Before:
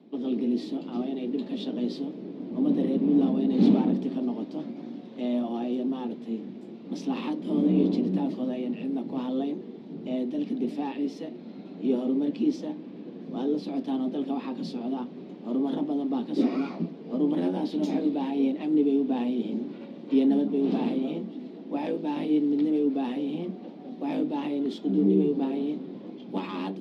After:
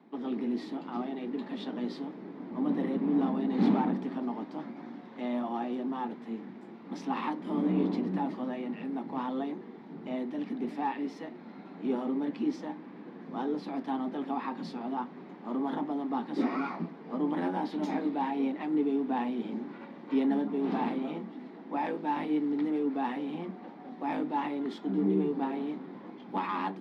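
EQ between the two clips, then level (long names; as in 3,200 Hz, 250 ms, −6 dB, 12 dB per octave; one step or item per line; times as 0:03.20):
flat-topped bell 1,300 Hz +12.5 dB
−5.5 dB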